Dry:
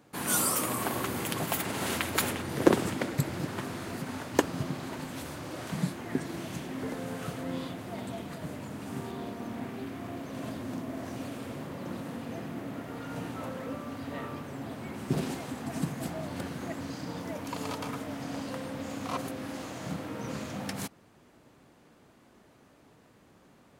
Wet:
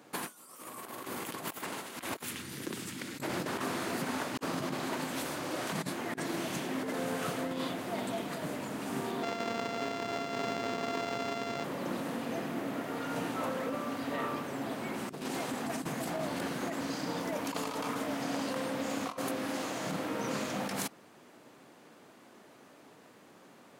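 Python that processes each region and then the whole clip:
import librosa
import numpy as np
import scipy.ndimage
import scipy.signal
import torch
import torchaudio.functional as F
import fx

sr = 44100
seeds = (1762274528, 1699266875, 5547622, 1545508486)

y = fx.chain(x, sr, fx.tone_stack(knobs='6-0-2'),
    fx.env_flatten(amount_pct=70), at=(2.23, 3.2))
y = fx.chain(y, sr, fx.sample_sort(block=64),
    fx.resample_linear(factor=4), at=(9.23, 11.64))
y = scipy.signal.sosfilt(scipy.signal.bessel(2, 260.0, 'highpass', norm='mag', fs=sr, output='sos'), y)
y = fx.dynamic_eq(y, sr, hz=1100.0, q=4.2, threshold_db=-47.0, ratio=4.0, max_db=3)
y = fx.over_compress(y, sr, threshold_db=-38.0, ratio=-0.5)
y = y * librosa.db_to_amplitude(3.0)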